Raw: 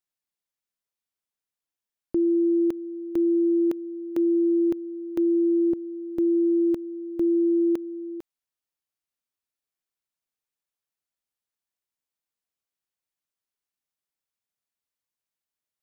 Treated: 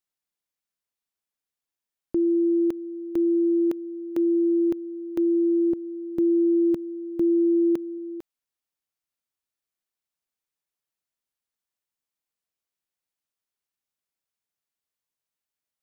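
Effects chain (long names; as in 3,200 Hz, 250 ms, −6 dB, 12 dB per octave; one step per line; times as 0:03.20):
0:05.82–0:07.98: dynamic equaliser 170 Hz, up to +6 dB, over −44 dBFS, Q 1.5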